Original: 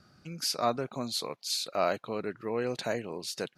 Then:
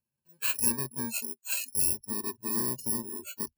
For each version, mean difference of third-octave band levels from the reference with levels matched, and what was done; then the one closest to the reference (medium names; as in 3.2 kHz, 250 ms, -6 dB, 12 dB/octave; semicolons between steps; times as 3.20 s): 13.5 dB: bit-reversed sample order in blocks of 64 samples; spectral noise reduction 30 dB; rippled EQ curve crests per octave 1.4, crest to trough 10 dB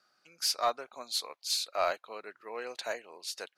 7.0 dB: high-pass 670 Hz 12 dB/octave; in parallel at -7 dB: overload inside the chain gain 28 dB; on the sum: upward expansion 1.5:1, over -43 dBFS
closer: second